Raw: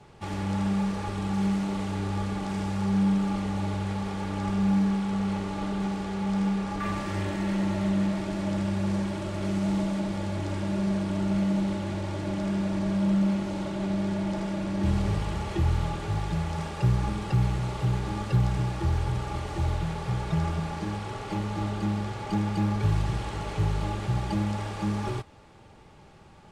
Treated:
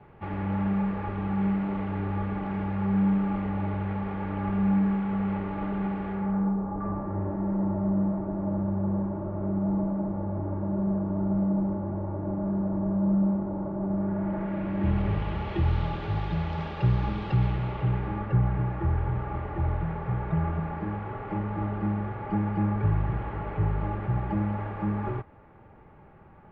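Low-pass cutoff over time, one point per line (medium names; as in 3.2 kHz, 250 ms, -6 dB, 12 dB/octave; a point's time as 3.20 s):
low-pass 24 dB/octave
6.10 s 2.3 kHz
6.58 s 1.1 kHz
13.86 s 1.1 kHz
14.59 s 2.3 kHz
15.78 s 3.7 kHz
17.32 s 3.7 kHz
18.34 s 2 kHz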